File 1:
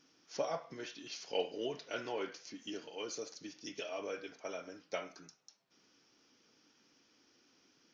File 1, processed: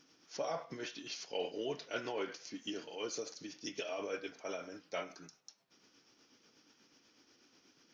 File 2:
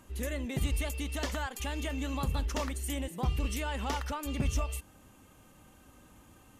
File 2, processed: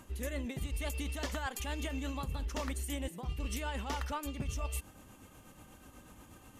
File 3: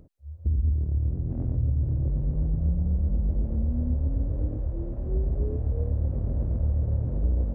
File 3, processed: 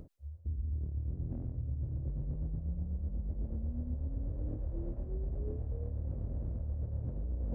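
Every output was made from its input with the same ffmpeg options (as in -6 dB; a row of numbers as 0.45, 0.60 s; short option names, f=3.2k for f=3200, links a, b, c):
-af "tremolo=f=8.2:d=0.42,areverse,acompressor=threshold=-37dB:ratio=12,areverse,volume=4dB"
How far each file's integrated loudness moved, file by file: +0.5, -4.0, -11.0 LU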